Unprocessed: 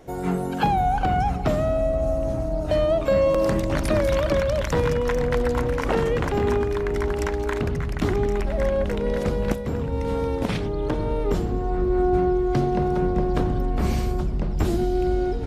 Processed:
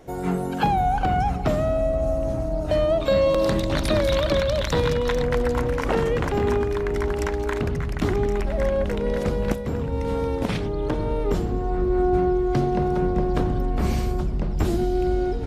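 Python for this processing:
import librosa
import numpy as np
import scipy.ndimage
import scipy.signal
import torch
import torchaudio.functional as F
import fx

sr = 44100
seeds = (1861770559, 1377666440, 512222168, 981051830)

y = fx.peak_eq(x, sr, hz=3800.0, db=11.5, octaves=0.46, at=(3.0, 5.23))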